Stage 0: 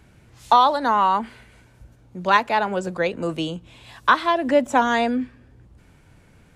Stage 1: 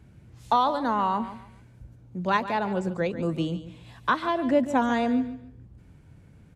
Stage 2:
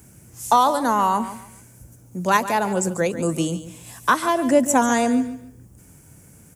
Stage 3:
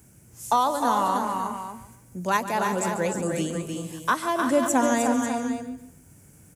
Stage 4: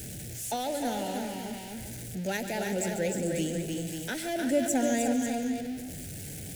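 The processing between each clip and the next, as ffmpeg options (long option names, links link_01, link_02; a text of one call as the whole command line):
ffmpeg -i in.wav -af "equalizer=frequency=120:width=0.34:gain=11.5,aecho=1:1:143|286|429:0.224|0.0582|0.0151,volume=-9dB" out.wav
ffmpeg -i in.wav -af "lowshelf=frequency=100:gain=-10,aexciter=amount=12.5:drive=3.3:freq=5800,volume=6dB" out.wav
ffmpeg -i in.wav -af "aecho=1:1:275|306|353|543:0.126|0.531|0.266|0.282,volume=-5.5dB" out.wav
ffmpeg -i in.wav -af "aeval=exprs='val(0)+0.5*0.0316*sgn(val(0))':channel_layout=same,asuperstop=centerf=1100:order=4:qfactor=1.2,volume=-5dB" out.wav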